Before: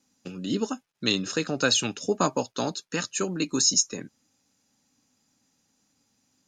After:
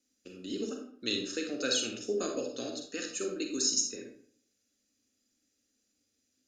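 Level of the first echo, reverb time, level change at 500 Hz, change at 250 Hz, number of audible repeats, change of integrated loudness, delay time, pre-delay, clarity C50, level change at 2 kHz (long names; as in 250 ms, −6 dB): no echo audible, 0.60 s, −5.5 dB, −8.0 dB, no echo audible, −7.0 dB, no echo audible, 37 ms, 4.5 dB, −9.0 dB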